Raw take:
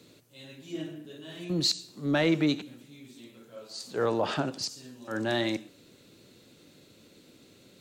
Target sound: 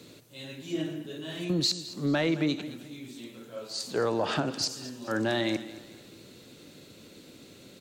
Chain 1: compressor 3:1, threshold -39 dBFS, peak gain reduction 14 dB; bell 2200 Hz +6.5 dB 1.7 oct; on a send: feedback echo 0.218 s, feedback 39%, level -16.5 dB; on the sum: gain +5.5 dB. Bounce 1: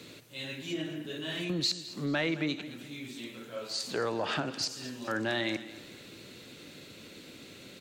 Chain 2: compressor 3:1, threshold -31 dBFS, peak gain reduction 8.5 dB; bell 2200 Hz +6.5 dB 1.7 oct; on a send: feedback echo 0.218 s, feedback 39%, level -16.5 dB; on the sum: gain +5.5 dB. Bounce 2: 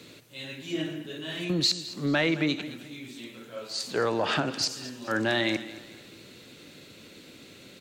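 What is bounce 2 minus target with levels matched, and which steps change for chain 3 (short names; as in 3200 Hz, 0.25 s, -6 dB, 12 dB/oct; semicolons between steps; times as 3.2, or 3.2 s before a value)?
2000 Hz band +4.0 dB
remove: bell 2200 Hz +6.5 dB 1.7 oct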